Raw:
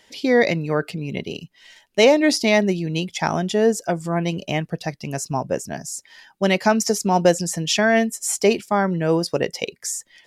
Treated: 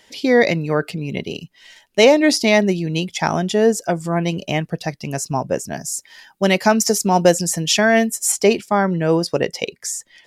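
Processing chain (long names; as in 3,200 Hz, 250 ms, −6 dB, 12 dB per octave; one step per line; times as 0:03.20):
high-shelf EQ 9,200 Hz +2 dB, from 0:05.73 +8 dB, from 0:08.32 −3 dB
level +2.5 dB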